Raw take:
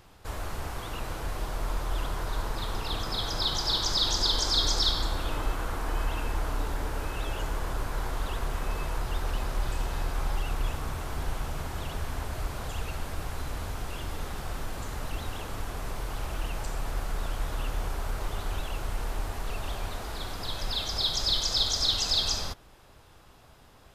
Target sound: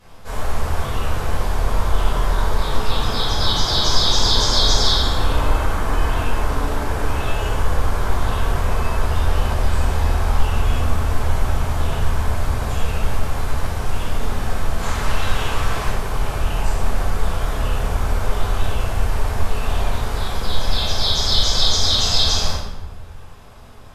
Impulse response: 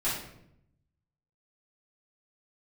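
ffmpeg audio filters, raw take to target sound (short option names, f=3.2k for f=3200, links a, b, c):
-filter_complex "[0:a]asettb=1/sr,asplit=3[a][b][c];[a]atrim=end=14.784[d];[b]atrim=start=14.78:end=15.88,asetpts=PTS-STARTPTS,afade=t=in:d=0.004:c=qsin,afade=t=out:st=1.096:d=0.004:c=qsin,equalizer=f=2.7k:w=0.31:g=6.5[e];[c]atrim=start=15.876[f];[d][e]acrossfade=d=0.004:c1=hsin:c2=qsin[g];[g][f]acrossfade=d=0.004:c1=qsin:c2=hsin[h];[1:a]atrim=start_sample=2205,asetrate=28224,aresample=44100[i];[h][i]afir=irnorm=-1:irlink=0,volume=-1.5dB"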